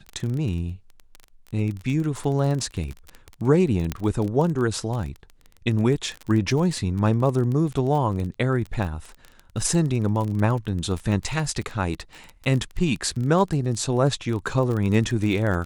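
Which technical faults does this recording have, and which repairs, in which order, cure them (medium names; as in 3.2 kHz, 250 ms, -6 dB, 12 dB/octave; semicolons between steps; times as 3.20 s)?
crackle 24 per s -27 dBFS
3.92 s: pop -11 dBFS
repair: de-click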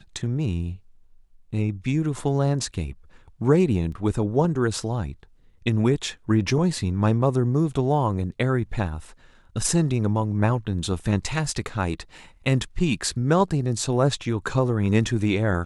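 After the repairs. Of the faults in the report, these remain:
3.92 s: pop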